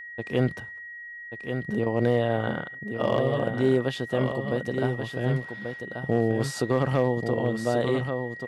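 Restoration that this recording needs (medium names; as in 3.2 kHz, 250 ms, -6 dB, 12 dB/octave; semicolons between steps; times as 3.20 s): clip repair -13 dBFS; band-stop 1.9 kHz, Q 30; inverse comb 1135 ms -7 dB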